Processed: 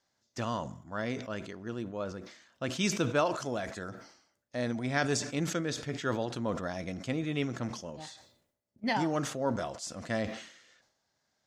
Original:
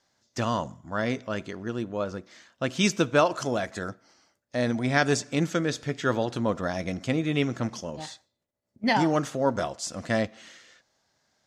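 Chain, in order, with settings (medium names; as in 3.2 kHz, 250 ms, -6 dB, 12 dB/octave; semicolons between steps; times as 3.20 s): decay stretcher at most 84 dB/s; trim -7 dB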